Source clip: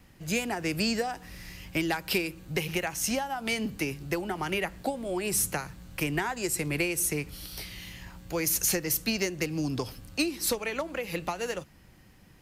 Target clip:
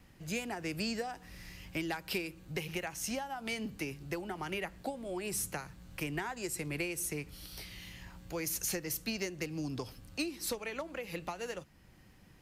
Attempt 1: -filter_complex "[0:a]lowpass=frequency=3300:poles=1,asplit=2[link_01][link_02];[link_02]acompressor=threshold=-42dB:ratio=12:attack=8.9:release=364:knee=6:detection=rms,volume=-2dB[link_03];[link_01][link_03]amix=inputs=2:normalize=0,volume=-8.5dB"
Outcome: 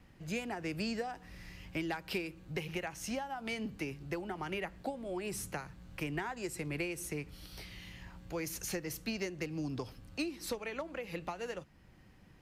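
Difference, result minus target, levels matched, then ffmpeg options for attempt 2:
8,000 Hz band −4.5 dB
-filter_complex "[0:a]lowpass=frequency=12000:poles=1,asplit=2[link_01][link_02];[link_02]acompressor=threshold=-42dB:ratio=12:attack=8.9:release=364:knee=6:detection=rms,volume=-2dB[link_03];[link_01][link_03]amix=inputs=2:normalize=0,volume=-8.5dB"

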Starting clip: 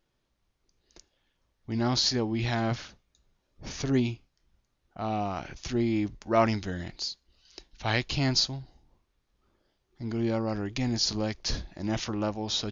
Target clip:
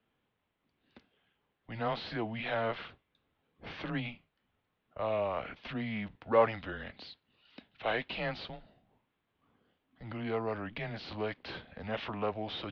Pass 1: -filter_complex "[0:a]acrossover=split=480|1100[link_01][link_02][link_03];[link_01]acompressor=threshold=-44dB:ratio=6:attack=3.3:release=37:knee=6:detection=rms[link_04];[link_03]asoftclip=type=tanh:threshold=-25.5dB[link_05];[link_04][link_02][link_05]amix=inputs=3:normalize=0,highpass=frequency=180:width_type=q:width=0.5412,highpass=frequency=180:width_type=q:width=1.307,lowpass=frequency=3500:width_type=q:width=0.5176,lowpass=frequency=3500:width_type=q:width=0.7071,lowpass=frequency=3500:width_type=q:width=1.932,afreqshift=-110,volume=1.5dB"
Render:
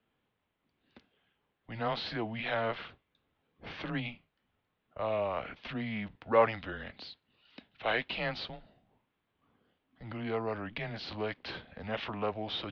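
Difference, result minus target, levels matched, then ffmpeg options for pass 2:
soft clipping: distortion −5 dB
-filter_complex "[0:a]acrossover=split=480|1100[link_01][link_02][link_03];[link_01]acompressor=threshold=-44dB:ratio=6:attack=3.3:release=37:knee=6:detection=rms[link_04];[link_03]asoftclip=type=tanh:threshold=-33dB[link_05];[link_04][link_02][link_05]amix=inputs=3:normalize=0,highpass=frequency=180:width_type=q:width=0.5412,highpass=frequency=180:width_type=q:width=1.307,lowpass=frequency=3500:width_type=q:width=0.5176,lowpass=frequency=3500:width_type=q:width=0.7071,lowpass=frequency=3500:width_type=q:width=1.932,afreqshift=-110,volume=1.5dB"

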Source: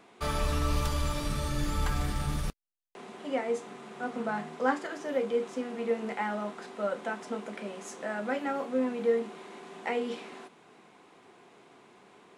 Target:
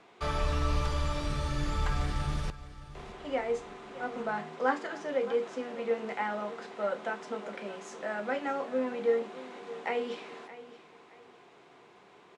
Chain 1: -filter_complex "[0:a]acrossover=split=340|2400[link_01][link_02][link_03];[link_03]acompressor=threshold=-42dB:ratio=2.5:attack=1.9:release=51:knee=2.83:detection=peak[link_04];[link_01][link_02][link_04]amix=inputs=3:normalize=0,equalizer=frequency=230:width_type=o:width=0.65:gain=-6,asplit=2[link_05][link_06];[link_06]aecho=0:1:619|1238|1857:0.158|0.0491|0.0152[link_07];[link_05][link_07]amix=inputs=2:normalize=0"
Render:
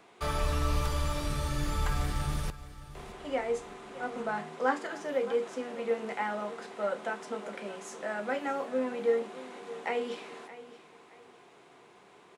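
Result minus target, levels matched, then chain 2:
8,000 Hz band +5.0 dB
-filter_complex "[0:a]acrossover=split=340|2400[link_01][link_02][link_03];[link_03]acompressor=threshold=-42dB:ratio=2.5:attack=1.9:release=51:knee=2.83:detection=peak[link_04];[link_01][link_02][link_04]amix=inputs=3:normalize=0,lowpass=6300,equalizer=frequency=230:width_type=o:width=0.65:gain=-6,asplit=2[link_05][link_06];[link_06]aecho=0:1:619|1238|1857:0.158|0.0491|0.0152[link_07];[link_05][link_07]amix=inputs=2:normalize=0"

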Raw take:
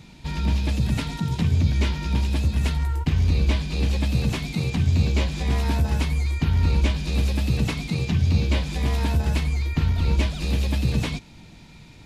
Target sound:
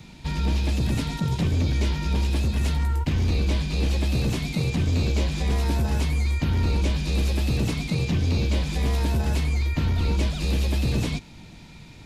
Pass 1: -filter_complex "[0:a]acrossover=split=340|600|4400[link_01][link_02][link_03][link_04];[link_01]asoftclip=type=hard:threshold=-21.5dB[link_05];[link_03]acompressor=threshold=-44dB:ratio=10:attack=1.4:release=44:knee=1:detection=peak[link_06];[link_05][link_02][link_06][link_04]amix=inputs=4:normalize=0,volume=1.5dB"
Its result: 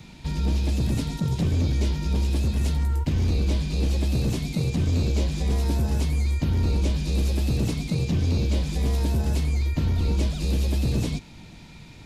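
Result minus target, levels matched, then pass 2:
downward compressor: peak gain reduction +7 dB
-filter_complex "[0:a]acrossover=split=340|600|4400[link_01][link_02][link_03][link_04];[link_01]asoftclip=type=hard:threshold=-21.5dB[link_05];[link_03]acompressor=threshold=-36dB:ratio=10:attack=1.4:release=44:knee=1:detection=peak[link_06];[link_05][link_02][link_06][link_04]amix=inputs=4:normalize=0,volume=1.5dB"

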